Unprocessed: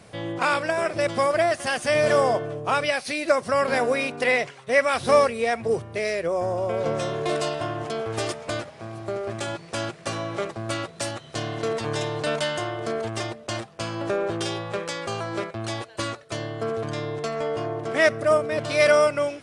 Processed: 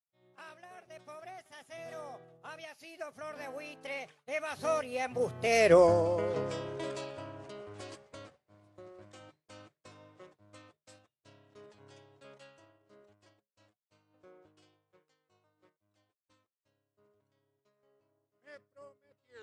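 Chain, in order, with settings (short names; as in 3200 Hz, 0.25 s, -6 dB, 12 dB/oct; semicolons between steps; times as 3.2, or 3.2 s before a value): tape stop at the end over 0.72 s; Doppler pass-by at 5.73, 30 m/s, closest 3.7 m; expander -57 dBFS; gain +5.5 dB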